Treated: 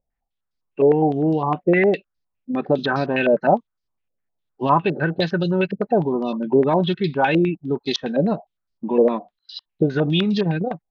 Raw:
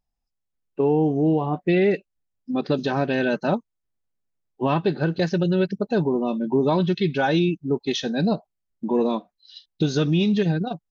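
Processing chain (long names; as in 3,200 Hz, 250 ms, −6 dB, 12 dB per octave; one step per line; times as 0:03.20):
low-pass on a step sequencer 9.8 Hz 560–4,800 Hz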